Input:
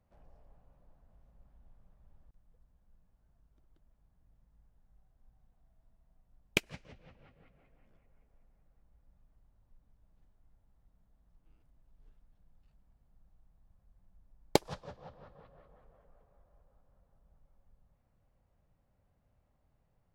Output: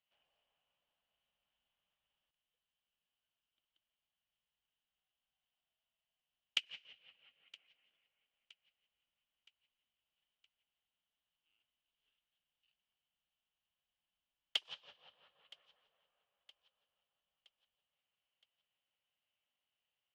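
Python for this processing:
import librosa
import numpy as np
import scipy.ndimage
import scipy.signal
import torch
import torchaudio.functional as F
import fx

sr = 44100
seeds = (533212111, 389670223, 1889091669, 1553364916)

p1 = 10.0 ** (-19.5 / 20.0) * (np.abs((x / 10.0 ** (-19.5 / 20.0) + 3.0) % 4.0 - 2.0) - 1.0)
p2 = fx.bandpass_q(p1, sr, hz=3000.0, q=8.6)
p3 = p2 + fx.echo_feedback(p2, sr, ms=968, feedback_pct=51, wet_db=-22, dry=0)
y = p3 * 10.0 ** (12.5 / 20.0)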